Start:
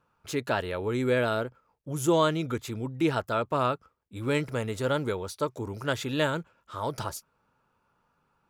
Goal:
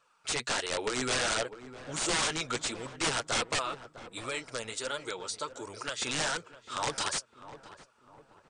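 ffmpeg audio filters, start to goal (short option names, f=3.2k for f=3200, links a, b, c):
-filter_complex "[0:a]highpass=f=810:p=1,highshelf=f=2.6k:g=11.5,acontrast=65,alimiter=limit=-10dB:level=0:latency=1:release=210,asettb=1/sr,asplit=3[a][b][c];[a]atrim=end=3.584[d];[b]atrim=start=3.58:end=6.02,asetpts=PTS-STARTPTS,afade=t=in:d=0.004:c=qsin,afade=t=out:st=2.436:d=0.004:c=qsin,acompressor=threshold=-34dB:ratio=2[e];[c]atrim=start=6.016[f];[d][e]acrossfade=d=0.004:c1=hsin:c2=qsin[g];[g][f]acrossfade=d=0.004:c1=qsin:c2=hsin,flanger=delay=1.6:depth=7.1:regen=23:speed=1.4:shape=sinusoidal,aeval=exprs='(mod(13.3*val(0)+1,2)-1)/13.3':c=same,asplit=2[h][i];[i]adelay=654,lowpass=f=1.1k:p=1,volume=-12.5dB,asplit=2[j][k];[k]adelay=654,lowpass=f=1.1k:p=1,volume=0.47,asplit=2[l][m];[m]adelay=654,lowpass=f=1.1k:p=1,volume=0.47,asplit=2[n][o];[o]adelay=654,lowpass=f=1.1k:p=1,volume=0.47,asplit=2[p][q];[q]adelay=654,lowpass=f=1.1k:p=1,volume=0.47[r];[h][j][l][n][p][r]amix=inputs=6:normalize=0" -ar 32000 -c:a mp2 -b:a 128k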